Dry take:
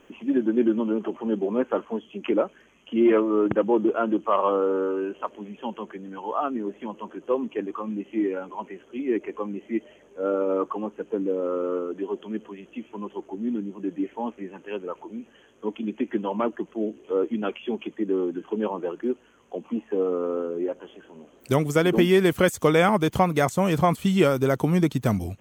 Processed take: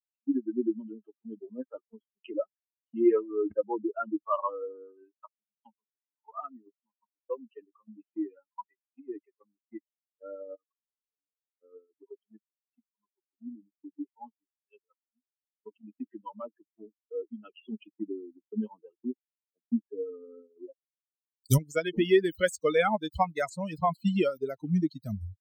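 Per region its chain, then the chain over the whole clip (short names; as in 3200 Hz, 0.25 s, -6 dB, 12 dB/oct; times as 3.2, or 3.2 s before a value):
6.5–9.01 high shelf 2300 Hz +6 dB + short-mantissa float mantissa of 6-bit
10.55–11.61 HPF 110 Hz 24 dB/oct + compressor 10:1, threshold -34 dBFS
17.49–21.58 tone controls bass +8 dB, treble +14 dB + mismatched tape noise reduction decoder only
whole clip: per-bin expansion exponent 3; expander -49 dBFS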